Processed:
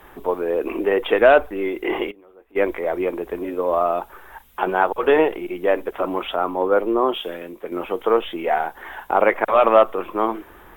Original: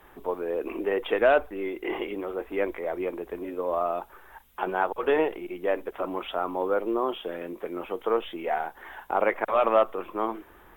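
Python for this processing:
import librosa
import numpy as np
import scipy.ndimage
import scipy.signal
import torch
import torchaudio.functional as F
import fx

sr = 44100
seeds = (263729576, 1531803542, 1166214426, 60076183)

y = fx.gate_flip(x, sr, shuts_db=-35.0, range_db=-24, at=(2.1, 2.55), fade=0.02)
y = fx.band_widen(y, sr, depth_pct=70, at=(6.36, 7.72))
y = y * librosa.db_to_amplitude(7.5)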